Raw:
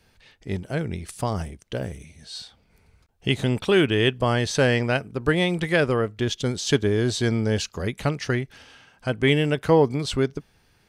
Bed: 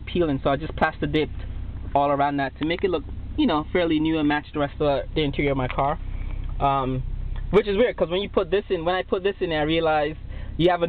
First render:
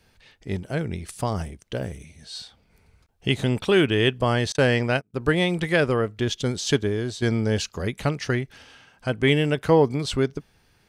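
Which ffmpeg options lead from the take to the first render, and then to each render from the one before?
-filter_complex "[0:a]asettb=1/sr,asplit=3[a][b][c];[a]atrim=end=4.524[d];[b]atrim=start=4.52:end=5.14,asetpts=PTS-STARTPTS,afade=t=in:d=0.004:c=qsin,afade=t=out:st=0.616:d=0.004:c=qsin,agate=range=-29dB:threshold=-28dB:ratio=16:release=100:detection=peak[e];[c]atrim=start=5.136[f];[d][e]acrossfade=d=0.004:c1=hsin:c2=qsin[g];[g][f]acrossfade=d=0.004:c1=qsin:c2=hsin,asplit=2[h][i];[h]atrim=end=7.22,asetpts=PTS-STARTPTS,afade=t=out:st=6.67:d=0.55:silence=0.316228[j];[i]atrim=start=7.22,asetpts=PTS-STARTPTS,afade=t=in:d=0.004:c=hsin:silence=0.316228[k];[j][k]concat=n=2:v=0:a=1"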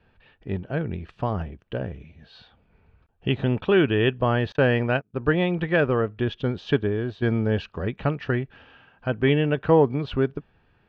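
-af "lowpass=f=2.8k:w=0.5412,lowpass=f=2.8k:w=1.3066,bandreject=f=2.1k:w=5.9"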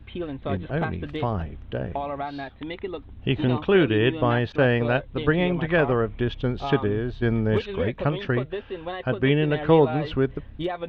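-filter_complex "[1:a]volume=-9.5dB[a];[0:a][a]amix=inputs=2:normalize=0"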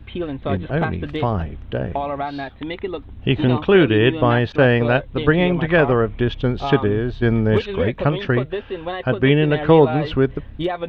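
-af "volume=5.5dB,alimiter=limit=-2dB:level=0:latency=1"

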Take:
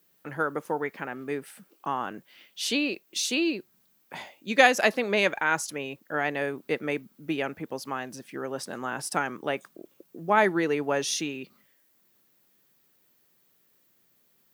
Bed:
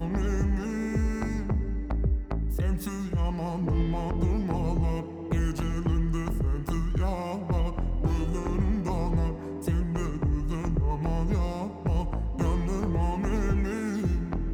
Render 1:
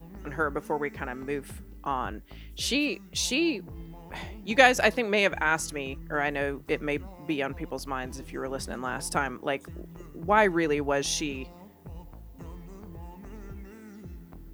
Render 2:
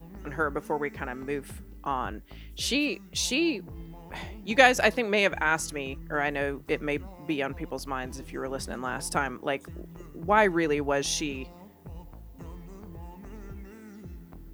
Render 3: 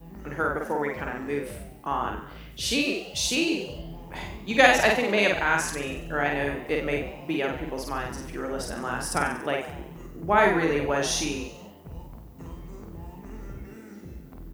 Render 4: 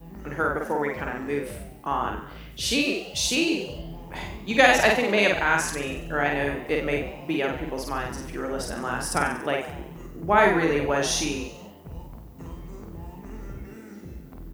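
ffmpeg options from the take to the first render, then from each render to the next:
-filter_complex "[1:a]volume=-16.5dB[a];[0:a][a]amix=inputs=2:normalize=0"
-af anull
-filter_complex "[0:a]asplit=2[a][b];[b]adelay=49,volume=-2.5dB[c];[a][c]amix=inputs=2:normalize=0,asplit=6[d][e][f][g][h][i];[e]adelay=94,afreqshift=83,volume=-11.5dB[j];[f]adelay=188,afreqshift=166,volume=-17.5dB[k];[g]adelay=282,afreqshift=249,volume=-23.5dB[l];[h]adelay=376,afreqshift=332,volume=-29.6dB[m];[i]adelay=470,afreqshift=415,volume=-35.6dB[n];[d][j][k][l][m][n]amix=inputs=6:normalize=0"
-af "volume=1.5dB,alimiter=limit=-3dB:level=0:latency=1"

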